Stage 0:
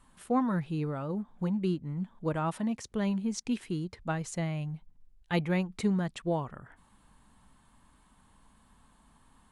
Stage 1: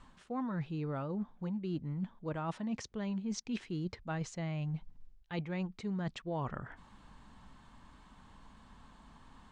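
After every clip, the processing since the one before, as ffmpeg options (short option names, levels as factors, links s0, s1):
-af "lowpass=f=6400:w=0.5412,lowpass=f=6400:w=1.3066,areverse,acompressor=threshold=0.0112:ratio=12,areverse,volume=1.78"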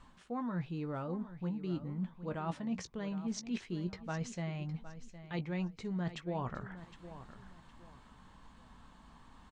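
-filter_complex "[0:a]asplit=2[s0][s1];[s1]adelay=17,volume=0.316[s2];[s0][s2]amix=inputs=2:normalize=0,aecho=1:1:762|1524|2286:0.211|0.0613|0.0178,volume=0.891"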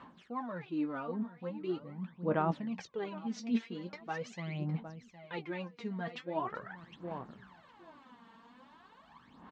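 -af "aphaser=in_gain=1:out_gain=1:delay=4.4:decay=0.72:speed=0.42:type=sinusoidal,highpass=210,lowpass=3800"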